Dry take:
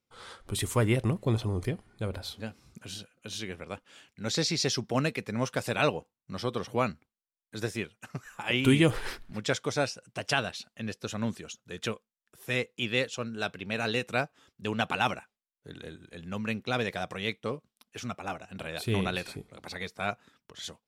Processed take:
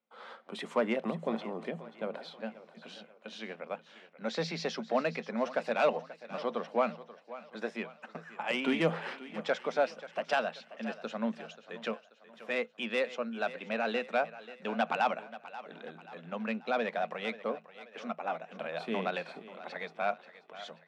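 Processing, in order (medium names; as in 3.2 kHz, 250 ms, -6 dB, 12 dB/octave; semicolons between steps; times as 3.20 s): low-pass 2.7 kHz 12 dB/octave; bass shelf 410 Hz -9.5 dB; saturation -20.5 dBFS, distortion -17 dB; rippled Chebyshev high-pass 160 Hz, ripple 9 dB; on a send: thinning echo 534 ms, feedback 49%, high-pass 280 Hz, level -15 dB; on the sum: trim +7.5 dB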